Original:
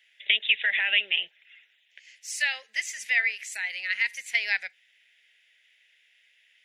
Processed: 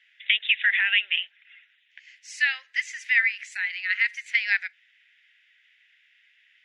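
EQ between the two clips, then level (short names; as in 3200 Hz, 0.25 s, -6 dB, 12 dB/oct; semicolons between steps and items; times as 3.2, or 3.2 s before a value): resonant high-pass 1400 Hz, resonance Q 1.9; air absorption 96 m; 0.0 dB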